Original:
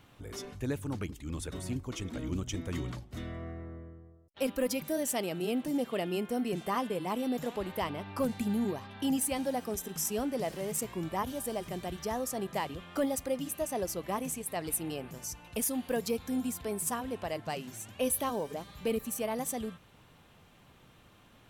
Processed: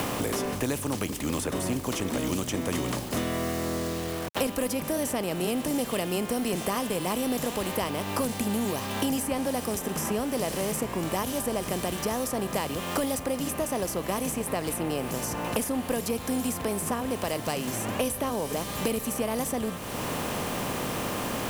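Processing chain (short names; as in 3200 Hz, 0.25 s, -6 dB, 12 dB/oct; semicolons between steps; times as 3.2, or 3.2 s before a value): per-bin compression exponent 0.6; bit-crush 8-bit; three-band squash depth 100%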